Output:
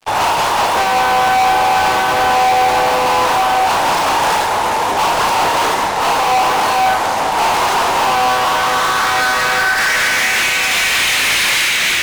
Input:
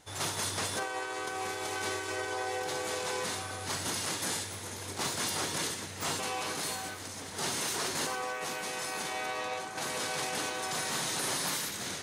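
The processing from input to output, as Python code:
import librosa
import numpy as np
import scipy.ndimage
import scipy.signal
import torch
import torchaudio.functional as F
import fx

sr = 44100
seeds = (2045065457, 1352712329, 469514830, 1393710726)

p1 = fx.filter_sweep_bandpass(x, sr, from_hz=870.0, to_hz=2400.0, start_s=8.1, end_s=10.65, q=3.2)
p2 = fx.rider(p1, sr, range_db=4, speed_s=0.5)
p3 = p1 + (p2 * 10.0 ** (0.5 / 20.0))
p4 = fx.fuzz(p3, sr, gain_db=48.0, gate_db=-56.0)
p5 = fx.hum_notches(p4, sr, base_hz=60, count=7)
y = fx.room_flutter(p5, sr, wall_m=6.1, rt60_s=0.23)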